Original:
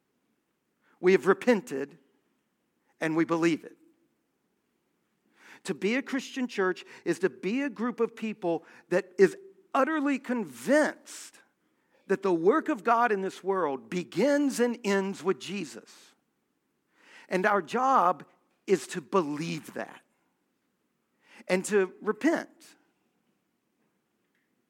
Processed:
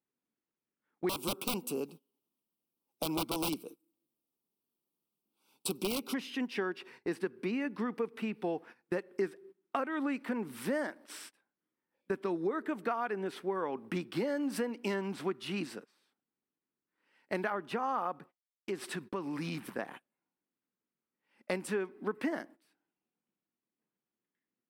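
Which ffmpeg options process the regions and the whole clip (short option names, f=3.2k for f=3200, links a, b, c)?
-filter_complex "[0:a]asettb=1/sr,asplit=3[a][b][c];[a]atrim=end=1.094[d];[b]atrim=start=1.09:end=6.14,asetpts=PTS-STARTPTS,afade=t=in:d=0.004:c=qsin,afade=t=out:st=5.046:d=0.004:c=qsin,aemphasis=mode=production:type=75kf,aeval=exprs='(mod(8.41*val(0)+1,2)-1)/8.41':c=same,asuperstop=centerf=1800:order=4:qfactor=1.3[e];[c]atrim=start=6.136[f];[d][e]acrossfade=d=0.004:c1=hsin:c2=qsin[g];[g][f]acrossfade=d=0.004:c1=qsin:c2=hsin,asettb=1/sr,asplit=3[h][i][j];[h]atrim=end=18.194[k];[i]atrim=start=18.19:end=19.64,asetpts=PTS-STARTPTS,afade=t=in:d=0.004:c=qsin,afade=t=out:st=1.446:d=0.004:c=qsin,agate=range=-33dB:threshold=-52dB:ratio=3:release=100:detection=peak,acompressor=threshold=-34dB:ratio=3:attack=3.2:release=140:knee=1:detection=peak[l];[j]atrim=start=19.636[m];[k][l]acrossfade=d=0.004:c1=hsin:c2=qsin[n];[n][m]acrossfade=d=0.004:c1=qsin:c2=hsin,agate=range=-18dB:threshold=-46dB:ratio=16:detection=peak,equalizer=f=6.8k:w=3.7:g=-14,acompressor=threshold=-31dB:ratio=5"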